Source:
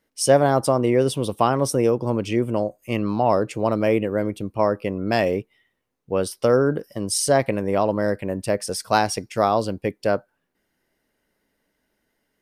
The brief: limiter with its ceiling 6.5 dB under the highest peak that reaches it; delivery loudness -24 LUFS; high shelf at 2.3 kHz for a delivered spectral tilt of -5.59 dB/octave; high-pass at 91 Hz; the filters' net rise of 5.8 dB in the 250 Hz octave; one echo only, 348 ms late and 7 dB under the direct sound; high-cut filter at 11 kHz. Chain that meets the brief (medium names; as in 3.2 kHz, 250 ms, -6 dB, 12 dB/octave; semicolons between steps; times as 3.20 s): high-pass 91 Hz; low-pass 11 kHz; peaking EQ 250 Hz +7.5 dB; treble shelf 2.3 kHz -4.5 dB; peak limiter -8 dBFS; delay 348 ms -7 dB; trim -3.5 dB